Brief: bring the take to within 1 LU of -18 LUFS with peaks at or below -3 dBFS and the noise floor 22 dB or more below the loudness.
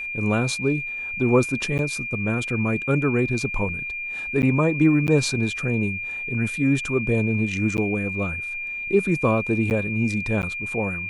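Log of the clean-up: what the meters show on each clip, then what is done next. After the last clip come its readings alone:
dropouts 6; longest dropout 9.5 ms; steady tone 2400 Hz; tone level -28 dBFS; loudness -23.0 LUFS; peak -6.5 dBFS; loudness target -18.0 LUFS
-> interpolate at 1.78/4.42/5.07/7.77/9.7/10.42, 9.5 ms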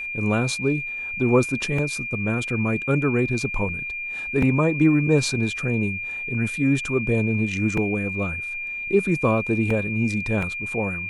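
dropouts 0; steady tone 2400 Hz; tone level -28 dBFS
-> notch 2400 Hz, Q 30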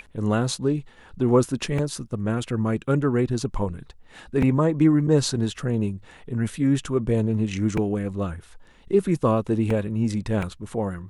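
steady tone none; loudness -24.0 LUFS; peak -7.0 dBFS; loudness target -18.0 LUFS
-> gain +6 dB; limiter -3 dBFS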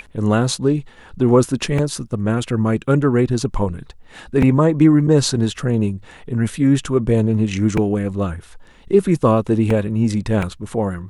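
loudness -18.0 LUFS; peak -3.0 dBFS; noise floor -45 dBFS

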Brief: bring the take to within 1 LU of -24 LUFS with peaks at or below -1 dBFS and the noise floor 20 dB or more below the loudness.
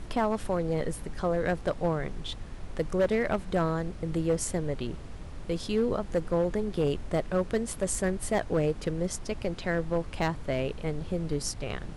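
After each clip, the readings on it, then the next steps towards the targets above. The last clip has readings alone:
clipped 1.2%; flat tops at -19.5 dBFS; noise floor -42 dBFS; noise floor target -51 dBFS; loudness -30.5 LUFS; peak -19.5 dBFS; loudness target -24.0 LUFS
-> clip repair -19.5 dBFS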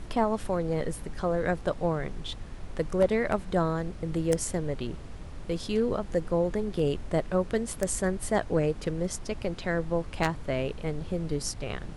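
clipped 0.0%; noise floor -42 dBFS; noise floor target -50 dBFS
-> noise print and reduce 8 dB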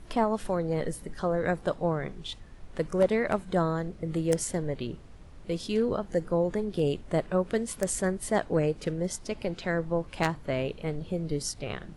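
noise floor -48 dBFS; noise floor target -50 dBFS
-> noise print and reduce 6 dB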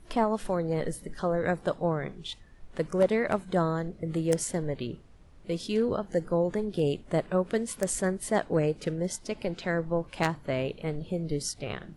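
noise floor -53 dBFS; loudness -30.0 LUFS; peak -10.5 dBFS; loudness target -24.0 LUFS
-> gain +6 dB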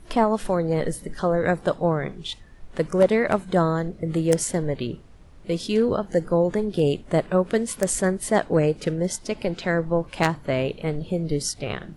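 loudness -24.0 LUFS; peak -4.5 dBFS; noise floor -47 dBFS

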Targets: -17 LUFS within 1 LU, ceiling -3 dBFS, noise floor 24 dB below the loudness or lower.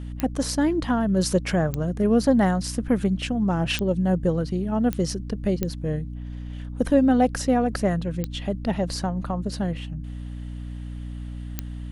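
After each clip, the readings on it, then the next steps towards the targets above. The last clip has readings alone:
clicks 7; hum 60 Hz; harmonics up to 300 Hz; hum level -32 dBFS; loudness -24.0 LUFS; peak -7.5 dBFS; loudness target -17.0 LUFS
-> de-click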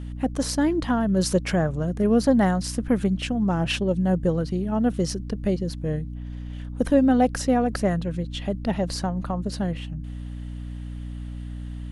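clicks 0; hum 60 Hz; harmonics up to 300 Hz; hum level -32 dBFS
-> notches 60/120/180/240/300 Hz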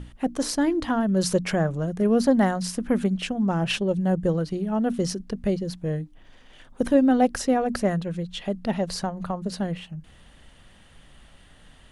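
hum none; loudness -25.0 LUFS; peak -7.0 dBFS; loudness target -17.0 LUFS
-> gain +8 dB; limiter -3 dBFS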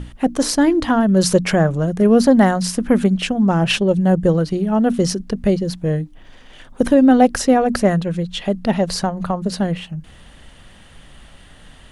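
loudness -17.0 LUFS; peak -3.0 dBFS; noise floor -45 dBFS

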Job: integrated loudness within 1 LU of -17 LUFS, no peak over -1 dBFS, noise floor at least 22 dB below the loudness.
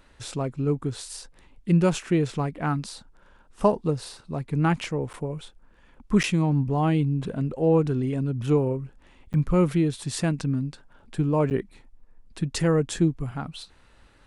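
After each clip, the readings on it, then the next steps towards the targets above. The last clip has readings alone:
dropouts 4; longest dropout 9.1 ms; loudness -25.5 LUFS; peak -8.0 dBFS; loudness target -17.0 LUFS
-> interpolate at 5.13/6.23/9.33/11.5, 9.1 ms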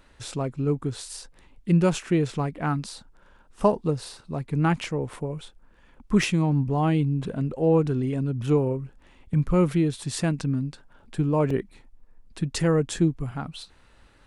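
dropouts 0; loudness -25.5 LUFS; peak -8.0 dBFS; loudness target -17.0 LUFS
-> gain +8.5 dB; limiter -1 dBFS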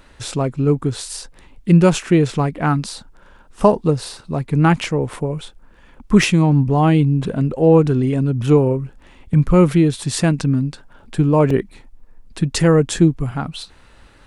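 loudness -17.0 LUFS; peak -1.0 dBFS; noise floor -48 dBFS

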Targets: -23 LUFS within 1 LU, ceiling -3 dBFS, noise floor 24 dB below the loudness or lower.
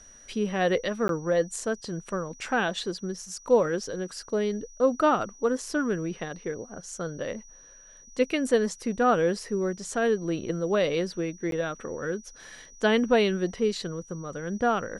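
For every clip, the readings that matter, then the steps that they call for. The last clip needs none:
dropouts 2; longest dropout 12 ms; steady tone 5800 Hz; tone level -50 dBFS; loudness -28.0 LUFS; peak -10.0 dBFS; loudness target -23.0 LUFS
-> interpolate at 1.08/11.51, 12 ms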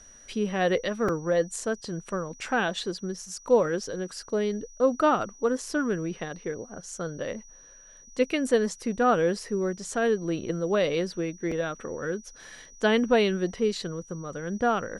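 dropouts 0; steady tone 5800 Hz; tone level -50 dBFS
-> notch 5800 Hz, Q 30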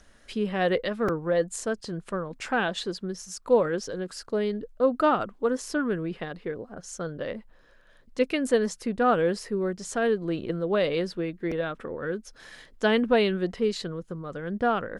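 steady tone none; loudness -28.0 LUFS; peak -10.0 dBFS; loudness target -23.0 LUFS
-> gain +5 dB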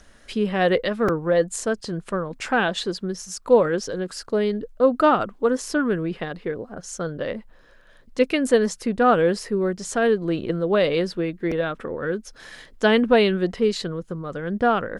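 loudness -23.0 LUFS; peak -5.0 dBFS; noise floor -52 dBFS

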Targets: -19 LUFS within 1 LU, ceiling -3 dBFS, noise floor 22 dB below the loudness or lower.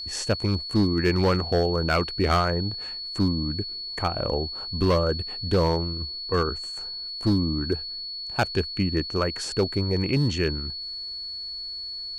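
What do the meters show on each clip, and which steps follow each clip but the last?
clipped 1.0%; flat tops at -15.0 dBFS; steady tone 4400 Hz; tone level -32 dBFS; loudness -26.0 LUFS; peak -15.0 dBFS; loudness target -19.0 LUFS
-> clip repair -15 dBFS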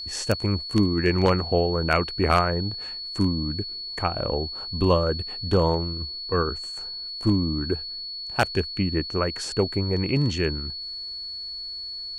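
clipped 0.0%; steady tone 4400 Hz; tone level -32 dBFS
-> notch 4400 Hz, Q 30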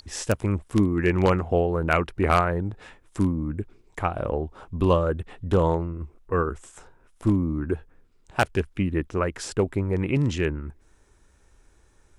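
steady tone none; loudness -25.5 LUFS; peak -5.5 dBFS; loudness target -19.0 LUFS
-> gain +6.5 dB; limiter -3 dBFS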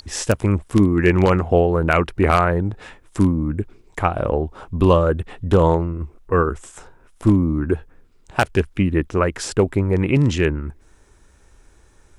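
loudness -19.5 LUFS; peak -3.0 dBFS; noise floor -53 dBFS

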